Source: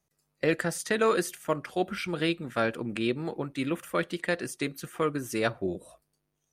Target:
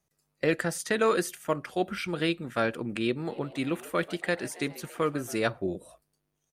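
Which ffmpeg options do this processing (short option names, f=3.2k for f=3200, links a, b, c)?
-filter_complex "[0:a]asplit=3[a][b][c];[a]afade=t=out:st=3.29:d=0.02[d];[b]asplit=7[e][f][g][h][i][j][k];[f]adelay=139,afreqshift=98,volume=-18.5dB[l];[g]adelay=278,afreqshift=196,volume=-22.7dB[m];[h]adelay=417,afreqshift=294,volume=-26.8dB[n];[i]adelay=556,afreqshift=392,volume=-31dB[o];[j]adelay=695,afreqshift=490,volume=-35.1dB[p];[k]adelay=834,afreqshift=588,volume=-39.3dB[q];[e][l][m][n][o][p][q]amix=inputs=7:normalize=0,afade=t=in:st=3.29:d=0.02,afade=t=out:st=5.35:d=0.02[r];[c]afade=t=in:st=5.35:d=0.02[s];[d][r][s]amix=inputs=3:normalize=0"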